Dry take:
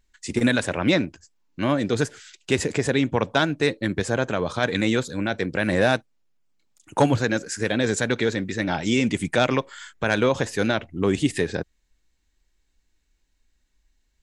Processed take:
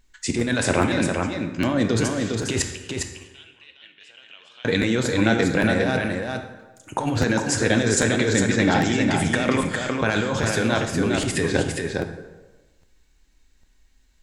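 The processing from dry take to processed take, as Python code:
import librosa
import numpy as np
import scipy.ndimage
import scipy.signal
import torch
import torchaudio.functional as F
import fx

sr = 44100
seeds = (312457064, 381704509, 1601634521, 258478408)

y = fx.over_compress(x, sr, threshold_db=-25.0, ratio=-1.0)
y = fx.bandpass_q(y, sr, hz=2900.0, q=16.0, at=(2.62, 4.65))
y = y + 10.0 ** (-4.5 / 20.0) * np.pad(y, (int(406 * sr / 1000.0), 0))[:len(y)]
y = fx.rev_plate(y, sr, seeds[0], rt60_s=1.2, hf_ratio=0.65, predelay_ms=0, drr_db=5.5)
y = fx.buffer_crackle(y, sr, first_s=0.81, period_s=0.8, block=512, kind='repeat')
y = F.gain(torch.from_numpy(y), 3.0).numpy()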